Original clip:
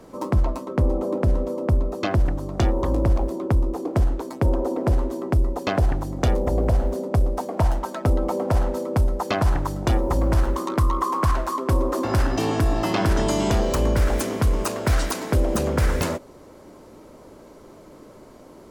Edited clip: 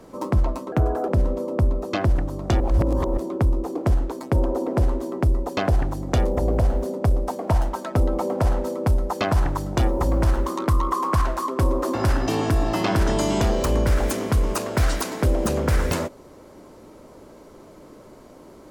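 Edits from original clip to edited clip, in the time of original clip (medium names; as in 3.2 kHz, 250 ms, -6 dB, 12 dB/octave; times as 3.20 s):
0.72–1.18 s: speed 127%
2.70–3.27 s: reverse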